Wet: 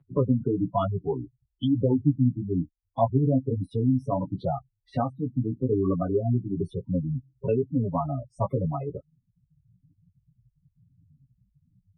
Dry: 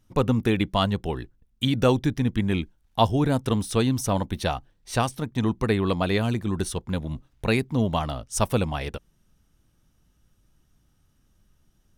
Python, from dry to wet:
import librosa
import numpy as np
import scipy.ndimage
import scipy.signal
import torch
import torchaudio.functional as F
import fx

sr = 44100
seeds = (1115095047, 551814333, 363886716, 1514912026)

y = fx.spec_gate(x, sr, threshold_db=-10, keep='strong')
y = scipy.signal.sosfilt(scipy.signal.butter(2, 100.0, 'highpass', fs=sr, output='sos'), y)
y = fx.peak_eq(y, sr, hz=6200.0, db=-14.0, octaves=0.41)
y = y + 0.99 * np.pad(y, (int(7.2 * sr / 1000.0), 0))[:len(y)]
y = fx.chorus_voices(y, sr, voices=2, hz=1.1, base_ms=13, depth_ms=3.1, mix_pct=35)
y = fx.air_absorb(y, sr, metres=340.0)
y = fx.band_squash(y, sr, depth_pct=40)